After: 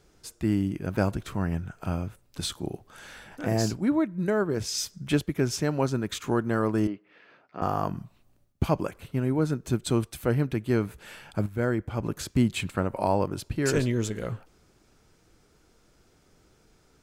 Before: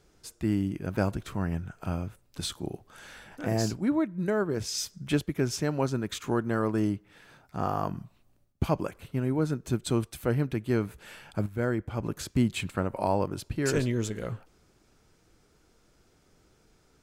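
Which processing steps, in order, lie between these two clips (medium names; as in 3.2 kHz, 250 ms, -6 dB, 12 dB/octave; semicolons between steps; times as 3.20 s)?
6.87–7.62 s: cabinet simulation 330–3900 Hz, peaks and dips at 850 Hz -7 dB, 1.5 kHz -4 dB, 3.6 kHz -8 dB; trim +2 dB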